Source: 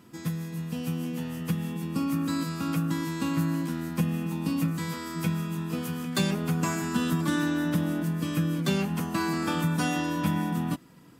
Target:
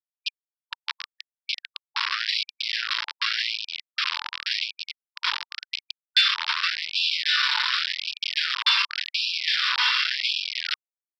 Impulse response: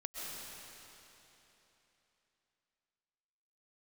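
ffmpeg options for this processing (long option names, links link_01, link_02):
-af "lowpass=frequency=3700:width_type=q:width=3.7,aresample=11025,acrusher=bits=3:mix=0:aa=0.000001,aresample=44100,acontrast=36,afftfilt=real='re*gte(b*sr/1024,860*pow(2400/860,0.5+0.5*sin(2*PI*0.89*pts/sr)))':imag='im*gte(b*sr/1024,860*pow(2400/860,0.5+0.5*sin(2*PI*0.89*pts/sr)))':win_size=1024:overlap=0.75"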